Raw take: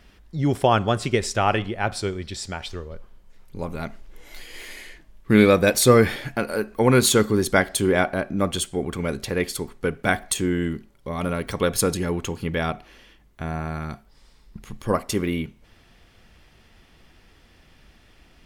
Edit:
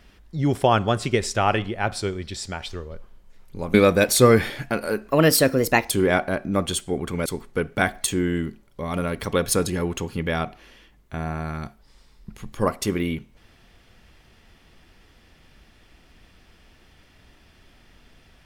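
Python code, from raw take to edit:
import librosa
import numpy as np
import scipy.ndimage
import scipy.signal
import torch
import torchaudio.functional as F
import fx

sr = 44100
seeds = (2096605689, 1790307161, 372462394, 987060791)

y = fx.edit(x, sr, fx.cut(start_s=3.74, length_s=1.66),
    fx.speed_span(start_s=6.76, length_s=1.0, speed=1.24),
    fx.cut(start_s=9.11, length_s=0.42), tone=tone)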